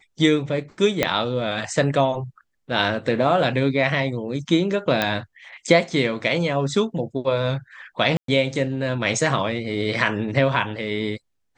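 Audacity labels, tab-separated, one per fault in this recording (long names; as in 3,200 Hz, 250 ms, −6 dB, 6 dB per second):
1.030000	1.030000	click −4 dBFS
5.020000	5.020000	click −6 dBFS
8.170000	8.280000	drop-out 113 ms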